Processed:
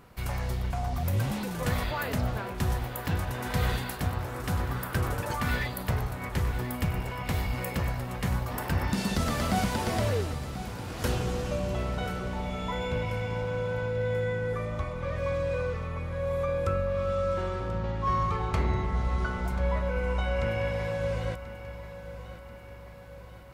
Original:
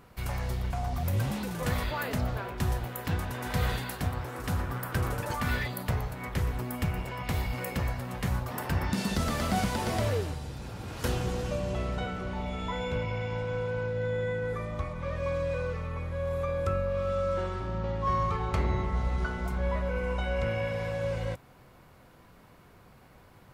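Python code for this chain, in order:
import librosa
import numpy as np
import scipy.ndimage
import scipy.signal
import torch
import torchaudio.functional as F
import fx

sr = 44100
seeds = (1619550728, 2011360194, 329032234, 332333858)

y = fx.echo_feedback(x, sr, ms=1036, feedback_pct=53, wet_db=-13.5)
y = y * librosa.db_to_amplitude(1.0)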